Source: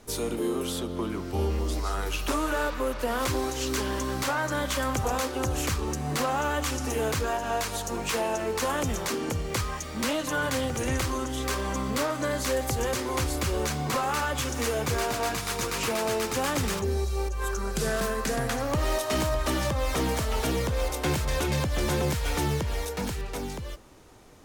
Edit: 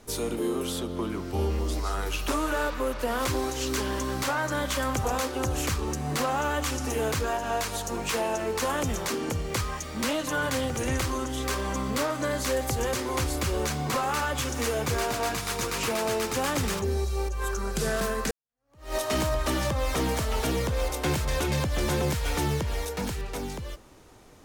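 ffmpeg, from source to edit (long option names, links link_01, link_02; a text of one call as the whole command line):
ffmpeg -i in.wav -filter_complex "[0:a]asplit=2[link_01][link_02];[link_01]atrim=end=18.31,asetpts=PTS-STARTPTS,afade=type=out:start_time=18.306:duration=0.004:curve=hsin[link_03];[link_02]atrim=start=18.31,asetpts=PTS-STARTPTS,afade=type=in:duration=0.65:curve=exp[link_04];[link_03][link_04]concat=n=2:v=0:a=1" out.wav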